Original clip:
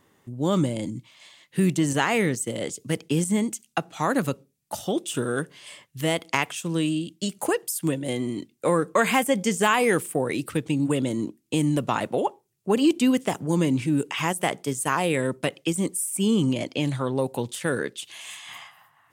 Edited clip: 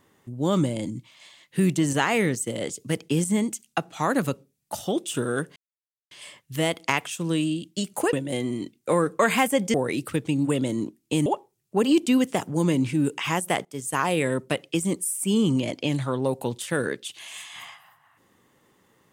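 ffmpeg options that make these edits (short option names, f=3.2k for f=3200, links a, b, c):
-filter_complex "[0:a]asplit=6[a][b][c][d][e][f];[a]atrim=end=5.56,asetpts=PTS-STARTPTS,afade=t=out:st=5.556:d=0.004:c=hsin,apad=pad_dur=0.55[g];[b]atrim=start=5.56:end=7.582,asetpts=PTS-STARTPTS,afade=t=in:d=0.004:c=hsin[h];[c]atrim=start=7.888:end=9.502[i];[d]atrim=start=10.148:end=11.672[j];[e]atrim=start=12.188:end=14.58,asetpts=PTS-STARTPTS,afade=t=out:st=2.388:d=0.004:c=hsin:silence=0.0944061[k];[f]atrim=start=14.58,asetpts=PTS-STARTPTS,afade=t=in:d=0.44:c=qsin:silence=0.0944061[l];[g][h]concat=n=2:v=0:a=1[m];[m][i]acrossfade=d=0.004:c1=hsin:c2=hsin[n];[n][j]acrossfade=d=0.004:c1=hsin:c2=hsin[o];[k][l]concat=n=2:v=0:a=1[p];[o][p]acrossfade=d=0.004:c1=hsin:c2=hsin"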